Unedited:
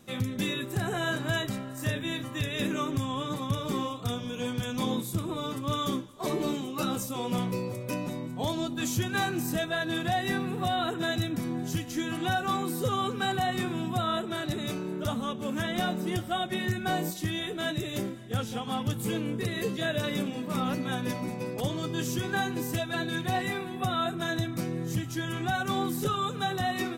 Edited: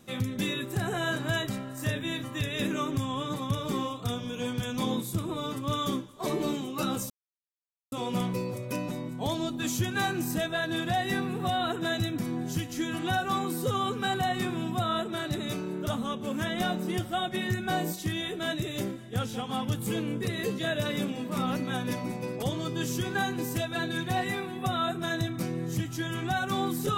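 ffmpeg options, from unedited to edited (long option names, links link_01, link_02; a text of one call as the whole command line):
ffmpeg -i in.wav -filter_complex "[0:a]asplit=2[link_01][link_02];[link_01]atrim=end=7.1,asetpts=PTS-STARTPTS,afade=type=out:start_time=7.096:duration=0.004:curve=hsin,apad=pad_dur=0.82[link_03];[link_02]atrim=start=7.1,asetpts=PTS-STARTPTS,afade=type=in:duration=0.004:curve=hsin[link_04];[link_03][link_04]concat=n=2:v=0:a=1" out.wav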